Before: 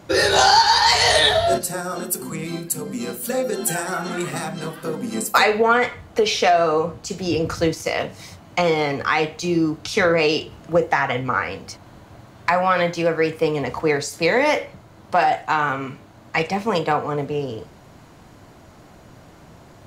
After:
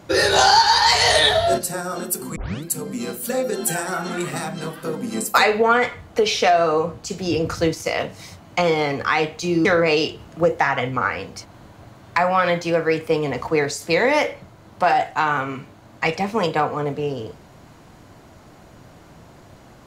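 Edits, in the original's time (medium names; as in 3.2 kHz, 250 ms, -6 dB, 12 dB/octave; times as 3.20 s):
2.36 s: tape start 0.28 s
9.65–9.97 s: delete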